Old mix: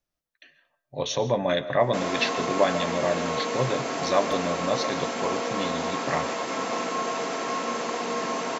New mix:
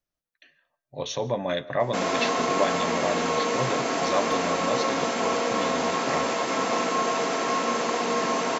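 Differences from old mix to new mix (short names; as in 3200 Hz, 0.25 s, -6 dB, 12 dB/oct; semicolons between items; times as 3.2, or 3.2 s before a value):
speech: send -9.0 dB; background +3.5 dB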